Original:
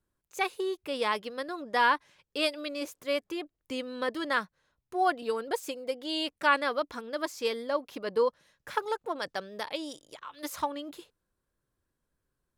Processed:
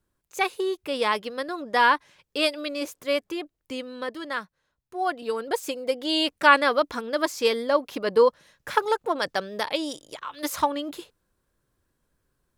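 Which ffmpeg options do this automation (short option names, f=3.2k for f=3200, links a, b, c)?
-af "volume=15dB,afade=t=out:st=3.14:d=1.06:silence=0.446684,afade=t=in:st=4.95:d=1.1:silence=0.316228"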